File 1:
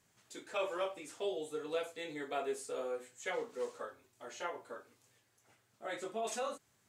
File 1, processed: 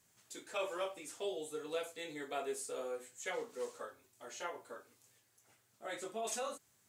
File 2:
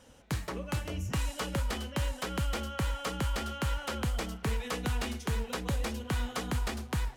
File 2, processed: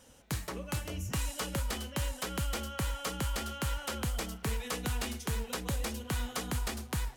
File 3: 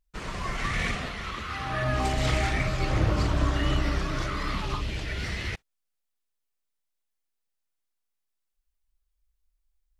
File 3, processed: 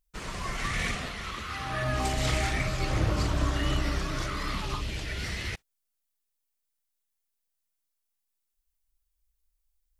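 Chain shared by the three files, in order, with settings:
high-shelf EQ 6,000 Hz +9.5 dB
level −2.5 dB

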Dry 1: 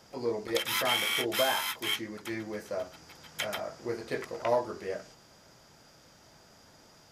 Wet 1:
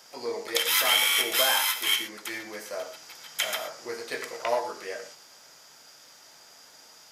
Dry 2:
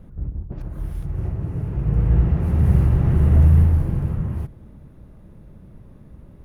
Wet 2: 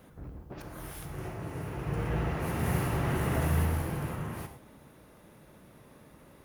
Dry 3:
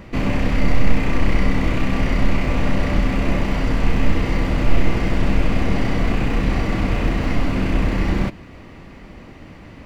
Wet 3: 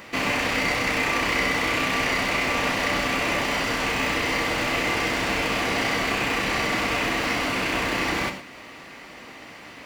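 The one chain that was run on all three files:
high-pass filter 1,100 Hz 6 dB per octave
high-shelf EQ 5,300 Hz +5 dB
reverb whose tail is shaped and stops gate 140 ms flat, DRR 7 dB
level +5.5 dB

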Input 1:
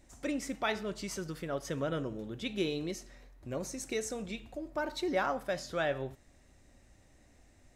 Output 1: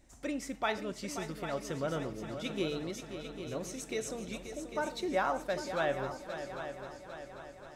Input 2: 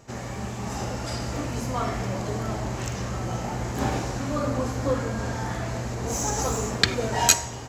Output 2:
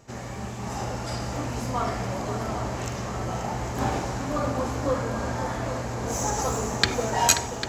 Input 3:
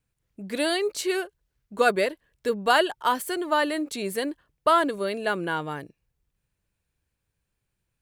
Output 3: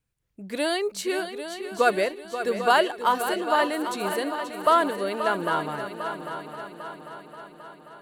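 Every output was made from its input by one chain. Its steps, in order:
dynamic equaliser 890 Hz, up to +4 dB, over −38 dBFS, Q 1.1
echo machine with several playback heads 266 ms, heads second and third, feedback 57%, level −10.5 dB
level −2 dB

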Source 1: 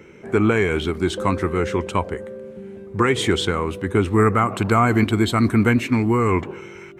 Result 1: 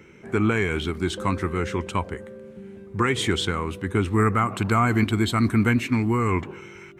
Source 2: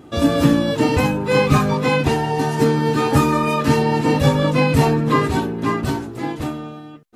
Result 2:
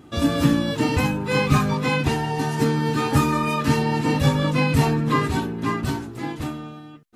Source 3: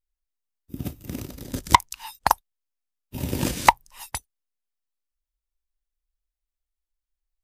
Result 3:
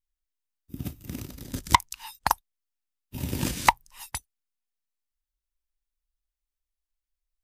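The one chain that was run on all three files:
parametric band 530 Hz −5.5 dB 1.4 octaves
level −2 dB

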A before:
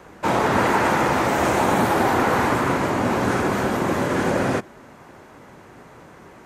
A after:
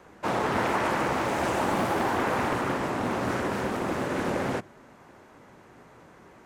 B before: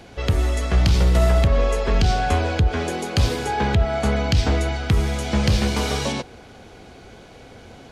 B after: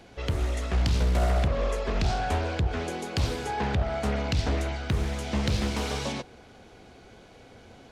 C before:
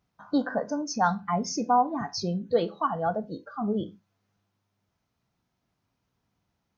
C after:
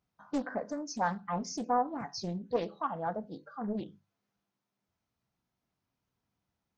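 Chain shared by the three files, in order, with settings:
mains-hum notches 50/100/150 Hz
highs frequency-modulated by the lows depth 0.53 ms
level −7 dB

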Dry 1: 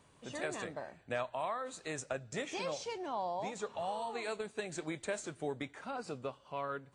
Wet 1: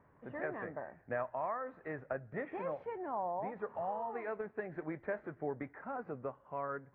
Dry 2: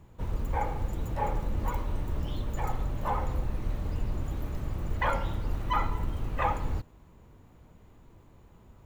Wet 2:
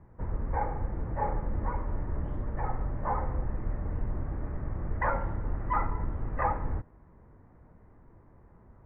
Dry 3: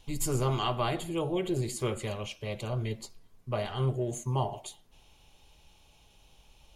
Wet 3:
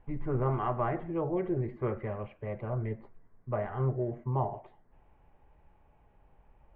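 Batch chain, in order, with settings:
Chebyshev low-pass filter 1,900 Hz, order 4

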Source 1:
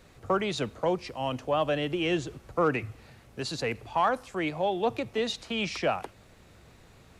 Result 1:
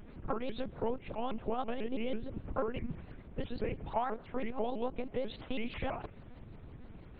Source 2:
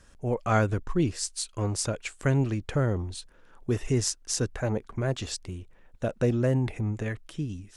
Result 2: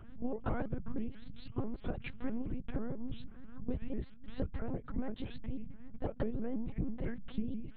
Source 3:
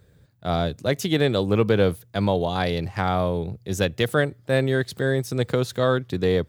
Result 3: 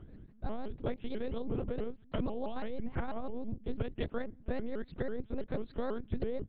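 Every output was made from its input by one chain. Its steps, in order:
spectral tilt −2.5 dB per octave
downward compressor 12 to 1, threshold −28 dBFS
amplitude modulation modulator 170 Hz, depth 70%
one-pitch LPC vocoder at 8 kHz 240 Hz
pitch modulation by a square or saw wave saw up 6.1 Hz, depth 250 cents
level +1 dB

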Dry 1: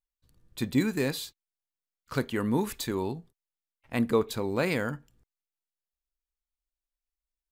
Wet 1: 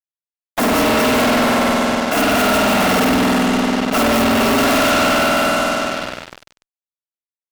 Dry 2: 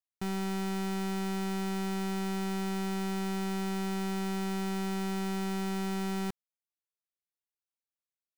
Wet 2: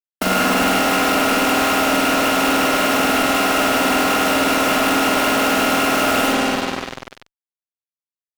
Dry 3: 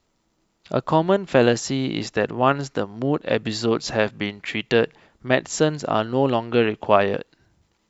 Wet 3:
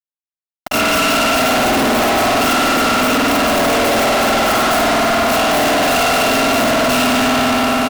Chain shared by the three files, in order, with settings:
samples in bit-reversed order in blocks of 256 samples
low-pass filter 2,200 Hz 12 dB per octave
downward expander −55 dBFS
tilt shelving filter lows +7.5 dB, about 1,400 Hz
downward compressor 5 to 1, threshold −33 dBFS
Chebyshev high-pass with heavy ripple 180 Hz, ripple 6 dB
noise that follows the level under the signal 11 dB
single-tap delay 283 ms −14.5 dB
spring reverb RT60 3.4 s, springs 48 ms, chirp 20 ms, DRR −8 dB
fuzz pedal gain 55 dB, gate −57 dBFS

